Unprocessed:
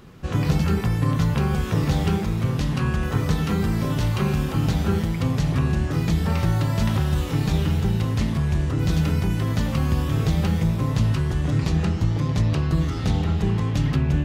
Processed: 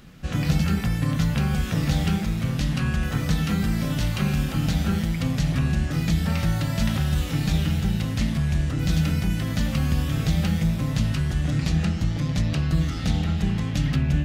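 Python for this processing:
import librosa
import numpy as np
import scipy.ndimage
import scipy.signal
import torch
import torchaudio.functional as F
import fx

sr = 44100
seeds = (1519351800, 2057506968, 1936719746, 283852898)

y = fx.graphic_eq_15(x, sr, hz=(100, 400, 1000), db=(-8, -11, -9))
y = y * librosa.db_to_amplitude(2.0)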